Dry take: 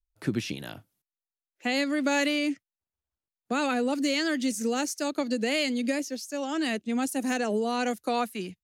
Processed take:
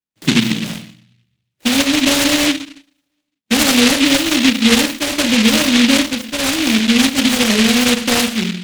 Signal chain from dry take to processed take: high-pass 160 Hz 12 dB/octave; treble shelf 3.4 kHz -10 dB; small resonant body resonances 810/1500/2900 Hz, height 7 dB; reverberation RT60 0.40 s, pre-delay 3 ms, DRR -1 dB; delay time shaken by noise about 2.8 kHz, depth 0.34 ms

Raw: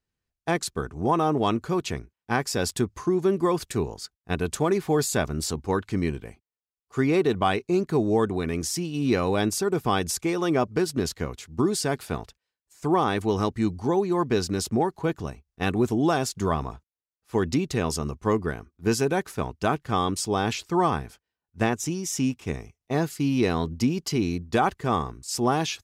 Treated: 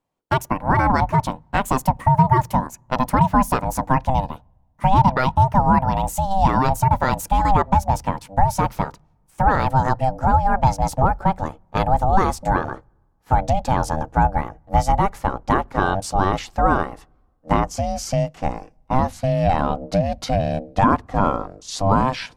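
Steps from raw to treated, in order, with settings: gliding tape speed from 152% -> 79%; peaking EQ 510 Hz +14.5 dB 2.4 oct; in parallel at +3 dB: compression, threshold -17 dBFS, peak gain reduction 12.5 dB; on the sum: ring modulator 390 Hz; on a send at -23.5 dB: RIAA curve playback + reverberation, pre-delay 3 ms; on the sum: trim -6 dB

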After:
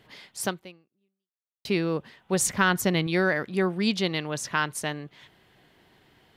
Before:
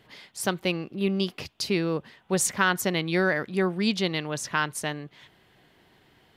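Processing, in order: 0.46–1.65 s: fade out exponential; 2.41–3.07 s: bass shelf 170 Hz +9.5 dB

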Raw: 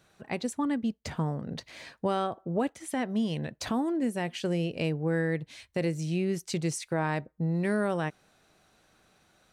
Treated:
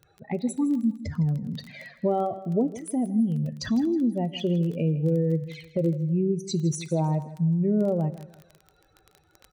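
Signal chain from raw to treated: spectral contrast enhancement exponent 2.3; two-slope reverb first 0.62 s, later 2 s, from -18 dB, DRR 15 dB; touch-sensitive flanger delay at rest 2.4 ms, full sweep at -29.5 dBFS; crackle 15 per s -39 dBFS; feedback delay 160 ms, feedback 31%, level -15.5 dB; trim +5.5 dB

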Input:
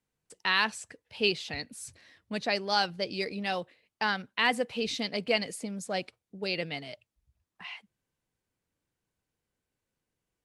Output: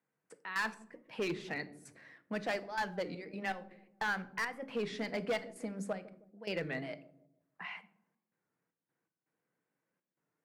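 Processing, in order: high-pass 150 Hz 24 dB/octave; resonant high shelf 2.5 kHz -10 dB, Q 1.5; hum notches 50/100/150/200/250/300/350/400 Hz; in parallel at +1.5 dB: compression, threshold -37 dBFS, peak gain reduction 16 dB; on the sum: trance gate "xx.x.xxxx.xxxx." 81 bpm -12 dB; overload inside the chain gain 23.5 dB; feedback echo behind a low-pass 157 ms, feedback 35%, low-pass 430 Hz, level -12 dB; reverberation RT60 0.55 s, pre-delay 6 ms, DRR 12 dB; warped record 33 1/3 rpm, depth 160 cents; trim -6 dB

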